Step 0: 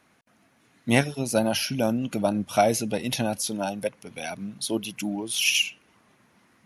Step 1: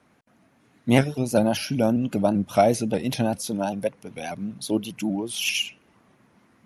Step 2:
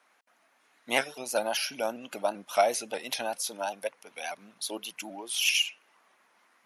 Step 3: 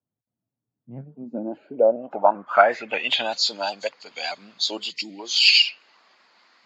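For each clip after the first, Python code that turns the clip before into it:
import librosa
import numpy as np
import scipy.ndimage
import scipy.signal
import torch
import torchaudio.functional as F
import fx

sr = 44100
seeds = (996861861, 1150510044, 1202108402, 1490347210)

y1 = fx.tilt_shelf(x, sr, db=4.0, hz=1200.0)
y1 = fx.vibrato_shape(y1, sr, shape='saw_up', rate_hz=5.1, depth_cents=100.0)
y2 = scipy.signal.sosfilt(scipy.signal.butter(2, 810.0, 'highpass', fs=sr, output='sos'), y1)
y3 = fx.freq_compress(y2, sr, knee_hz=3000.0, ratio=1.5)
y3 = fx.spec_box(y3, sr, start_s=4.91, length_s=0.28, low_hz=530.0, high_hz=1800.0, gain_db=-18)
y3 = fx.filter_sweep_lowpass(y3, sr, from_hz=110.0, to_hz=4500.0, start_s=0.76, end_s=3.38, q=4.8)
y3 = F.gain(torch.from_numpy(y3), 5.0).numpy()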